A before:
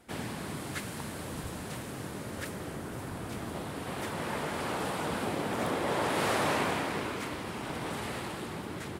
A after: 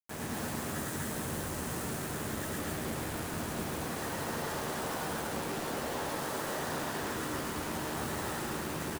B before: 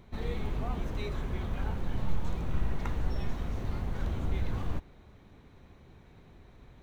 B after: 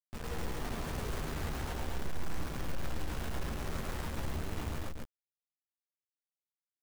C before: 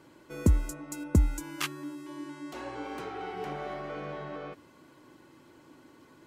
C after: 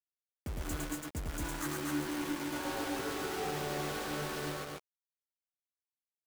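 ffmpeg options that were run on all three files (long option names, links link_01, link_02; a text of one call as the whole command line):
ffmpeg -i in.wav -filter_complex "[0:a]afftfilt=real='re*(1-between(b*sr/4096,2000,5900))':imag='im*(1-between(b*sr/4096,2000,5900))':win_size=4096:overlap=0.75,areverse,acompressor=threshold=-36dB:ratio=10,areverse,asoftclip=type=tanh:threshold=-33dB,acrusher=bits=6:mix=0:aa=0.000001,asplit=2[link_01][link_02];[link_02]adelay=13,volume=-10dB[link_03];[link_01][link_03]amix=inputs=2:normalize=0,aecho=1:1:107.9|244.9:0.794|0.794" out.wav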